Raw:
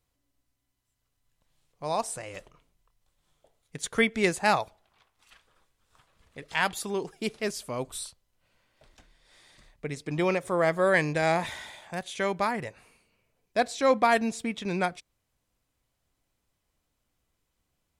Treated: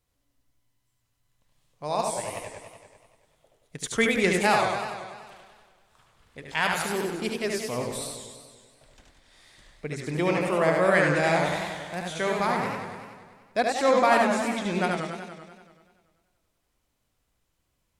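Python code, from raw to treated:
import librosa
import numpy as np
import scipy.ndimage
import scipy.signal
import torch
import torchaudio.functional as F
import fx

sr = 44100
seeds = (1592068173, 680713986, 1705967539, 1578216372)

y = x + 10.0 ** (-4.5 / 20.0) * np.pad(x, (int(74 * sr / 1000.0), 0))[:len(x)]
y = fx.echo_warbled(y, sr, ms=96, feedback_pct=68, rate_hz=2.8, cents=177, wet_db=-6)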